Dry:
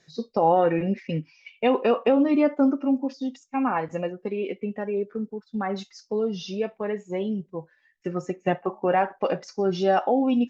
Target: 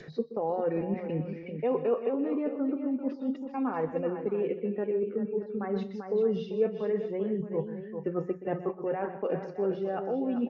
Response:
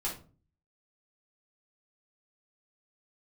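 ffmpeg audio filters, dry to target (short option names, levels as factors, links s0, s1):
-filter_complex "[0:a]bandreject=f=60:t=h:w=6,bandreject=f=120:t=h:w=6,bandreject=f=180:t=h:w=6,areverse,acompressor=threshold=0.0158:ratio=5,areverse,equalizer=f=450:w=3.2:g=8,aecho=1:1:124|155|392|620:0.211|0.141|0.355|0.2,adynamicequalizer=threshold=0.00447:dfrequency=830:dqfactor=0.82:tfrequency=830:tqfactor=0.82:attack=5:release=100:ratio=0.375:range=3.5:mode=cutabove:tftype=bell,acrossover=split=160[s0][s1];[s1]lowpass=1700[s2];[s0][s2]amix=inputs=2:normalize=0,acompressor=mode=upward:threshold=0.00794:ratio=2.5,volume=2"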